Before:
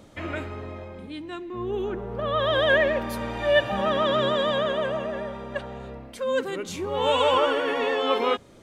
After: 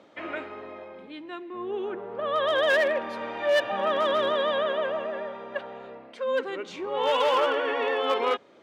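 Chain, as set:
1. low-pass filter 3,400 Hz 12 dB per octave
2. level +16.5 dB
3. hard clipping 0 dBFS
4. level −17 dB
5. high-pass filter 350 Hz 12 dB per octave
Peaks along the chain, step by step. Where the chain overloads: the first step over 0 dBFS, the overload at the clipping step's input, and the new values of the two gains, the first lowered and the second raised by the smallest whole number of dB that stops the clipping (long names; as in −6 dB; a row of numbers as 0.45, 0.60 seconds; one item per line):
−9.0, +7.5, 0.0, −17.0, −12.5 dBFS
step 2, 7.5 dB
step 2 +8.5 dB, step 4 −9 dB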